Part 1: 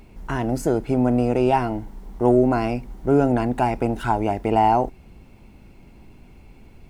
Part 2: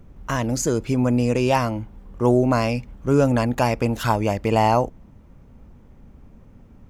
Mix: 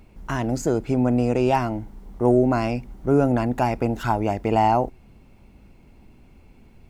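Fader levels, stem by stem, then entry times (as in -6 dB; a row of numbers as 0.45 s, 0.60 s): -4.5 dB, -9.5 dB; 0.00 s, 0.00 s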